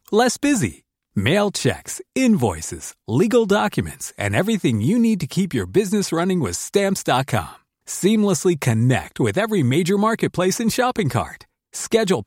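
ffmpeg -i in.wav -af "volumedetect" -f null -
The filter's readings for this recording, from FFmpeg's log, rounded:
mean_volume: -19.7 dB
max_volume: -3.9 dB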